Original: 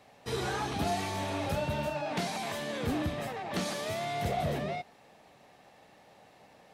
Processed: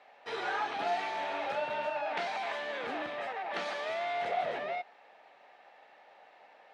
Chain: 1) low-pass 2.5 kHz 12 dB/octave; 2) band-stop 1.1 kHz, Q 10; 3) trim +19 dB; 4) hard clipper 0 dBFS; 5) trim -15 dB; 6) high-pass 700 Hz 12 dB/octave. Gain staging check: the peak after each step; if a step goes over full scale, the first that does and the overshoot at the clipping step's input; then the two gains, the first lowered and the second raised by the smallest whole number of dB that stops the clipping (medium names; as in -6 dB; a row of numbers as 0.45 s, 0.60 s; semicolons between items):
-22.5 dBFS, -22.5 dBFS, -3.5 dBFS, -3.5 dBFS, -18.5 dBFS, -22.0 dBFS; nothing clips